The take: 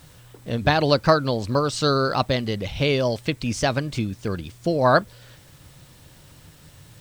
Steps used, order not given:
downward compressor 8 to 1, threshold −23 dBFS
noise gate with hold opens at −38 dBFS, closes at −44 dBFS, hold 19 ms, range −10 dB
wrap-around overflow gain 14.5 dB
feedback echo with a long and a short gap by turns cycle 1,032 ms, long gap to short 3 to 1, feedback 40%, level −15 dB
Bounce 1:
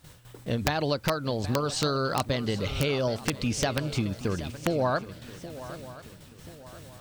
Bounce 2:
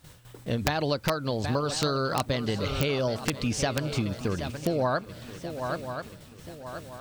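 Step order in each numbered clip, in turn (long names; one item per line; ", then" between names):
downward compressor, then noise gate with hold, then feedback echo with a long and a short gap by turns, then wrap-around overflow
noise gate with hold, then feedback echo with a long and a short gap by turns, then downward compressor, then wrap-around overflow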